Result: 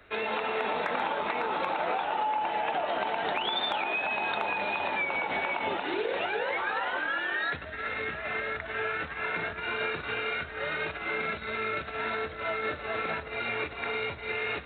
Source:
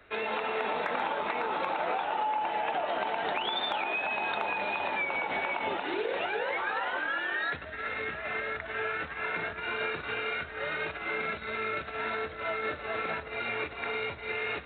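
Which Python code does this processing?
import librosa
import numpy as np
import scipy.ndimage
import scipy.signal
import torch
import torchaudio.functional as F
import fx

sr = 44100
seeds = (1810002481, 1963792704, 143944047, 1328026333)

y = fx.bass_treble(x, sr, bass_db=2, treble_db=3)
y = F.gain(torch.from_numpy(y), 1.0).numpy()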